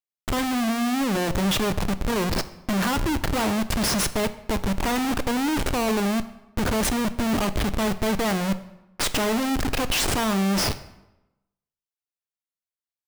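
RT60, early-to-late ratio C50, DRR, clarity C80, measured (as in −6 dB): 0.95 s, 15.0 dB, 11.5 dB, 17.0 dB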